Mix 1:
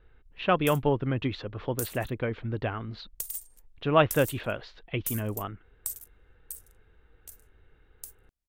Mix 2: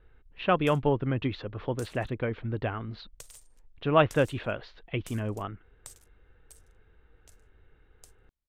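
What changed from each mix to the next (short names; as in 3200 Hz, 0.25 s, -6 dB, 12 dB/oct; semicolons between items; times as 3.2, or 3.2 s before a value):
master: add air absorption 90 m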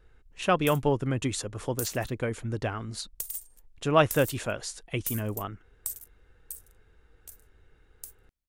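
speech: remove steep low-pass 3900 Hz 36 dB/oct; master: remove air absorption 90 m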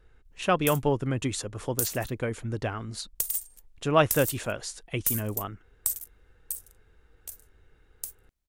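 background +6.5 dB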